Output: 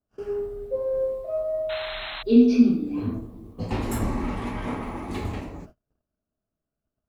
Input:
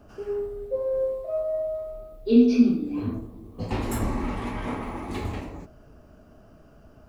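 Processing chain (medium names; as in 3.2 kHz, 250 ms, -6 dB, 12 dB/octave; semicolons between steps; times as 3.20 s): peaking EQ 170 Hz +2 dB 1.2 oct; gate -44 dBFS, range -35 dB; painted sound noise, 1.69–2.23 s, 580–4200 Hz -35 dBFS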